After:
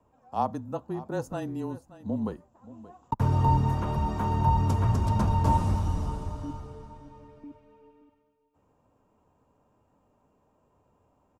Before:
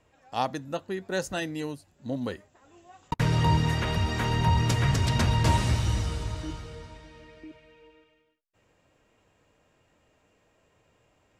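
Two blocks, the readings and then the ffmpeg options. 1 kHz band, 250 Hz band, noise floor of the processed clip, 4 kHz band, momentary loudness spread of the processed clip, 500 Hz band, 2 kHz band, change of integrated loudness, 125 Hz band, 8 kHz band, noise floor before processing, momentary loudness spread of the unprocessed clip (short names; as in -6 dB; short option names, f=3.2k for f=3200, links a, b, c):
+2.5 dB, 0.0 dB, -69 dBFS, -15.5 dB, 15 LU, -2.0 dB, -13.0 dB, -0.5 dB, -0.5 dB, under -10 dB, -68 dBFS, 14 LU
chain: -af "equalizer=f=125:t=o:w=1:g=5,equalizer=f=250:t=o:w=1:g=7,equalizer=f=1k:t=o:w=1:g=11,equalizer=f=2k:t=o:w=1:g=-12,equalizer=f=4k:t=o:w=1:g=-8,equalizer=f=8k:t=o:w=1:g=-4,afreqshift=-23,aecho=1:1:577:0.141,volume=-5.5dB"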